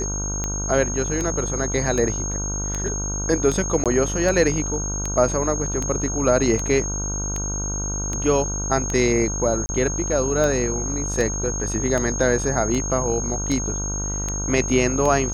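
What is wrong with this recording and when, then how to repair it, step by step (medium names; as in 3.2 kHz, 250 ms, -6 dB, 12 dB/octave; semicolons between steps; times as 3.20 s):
buzz 50 Hz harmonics 31 -28 dBFS
tick 78 rpm -12 dBFS
whine 6.5 kHz -27 dBFS
3.84–3.86 s: dropout 17 ms
9.66–9.69 s: dropout 30 ms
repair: de-click; de-hum 50 Hz, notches 31; band-stop 6.5 kHz, Q 30; interpolate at 3.84 s, 17 ms; interpolate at 9.66 s, 30 ms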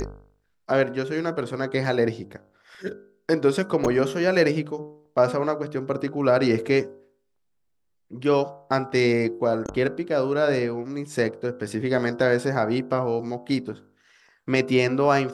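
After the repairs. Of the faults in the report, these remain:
whine 6.5 kHz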